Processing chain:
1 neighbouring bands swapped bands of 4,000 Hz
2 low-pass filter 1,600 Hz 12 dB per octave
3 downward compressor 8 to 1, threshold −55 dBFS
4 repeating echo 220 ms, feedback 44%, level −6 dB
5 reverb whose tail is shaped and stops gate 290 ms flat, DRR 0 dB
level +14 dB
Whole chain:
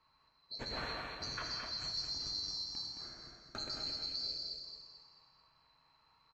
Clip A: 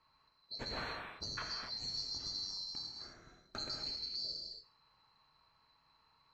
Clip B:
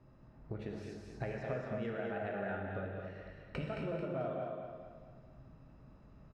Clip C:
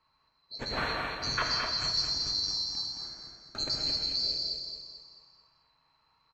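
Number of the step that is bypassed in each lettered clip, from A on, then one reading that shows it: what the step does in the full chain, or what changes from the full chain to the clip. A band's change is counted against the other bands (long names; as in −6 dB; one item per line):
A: 4, echo-to-direct ratio 2.0 dB to 0.0 dB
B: 1, 4 kHz band −35.5 dB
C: 3, change in momentary loudness spread +3 LU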